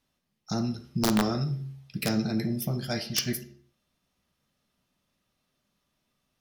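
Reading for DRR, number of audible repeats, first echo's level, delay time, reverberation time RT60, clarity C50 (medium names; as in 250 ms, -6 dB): 9.0 dB, no echo, no echo, no echo, 0.50 s, 13.0 dB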